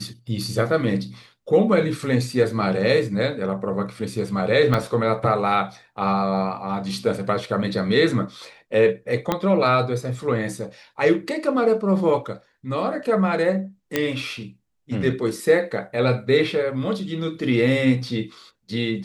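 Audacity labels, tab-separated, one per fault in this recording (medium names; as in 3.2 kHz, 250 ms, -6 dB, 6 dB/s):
4.740000	4.740000	dropout 2.3 ms
9.320000	9.320000	pop -7 dBFS
13.960000	13.960000	pop -6 dBFS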